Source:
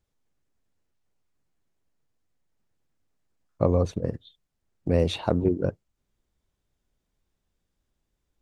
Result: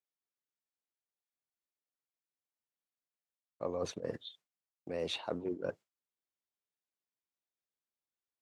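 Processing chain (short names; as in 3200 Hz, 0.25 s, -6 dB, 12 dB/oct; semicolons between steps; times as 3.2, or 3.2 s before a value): weighting filter A; gate with hold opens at -50 dBFS; reverse; compressor 5:1, threshold -39 dBFS, peak gain reduction 17.5 dB; reverse; gain +4 dB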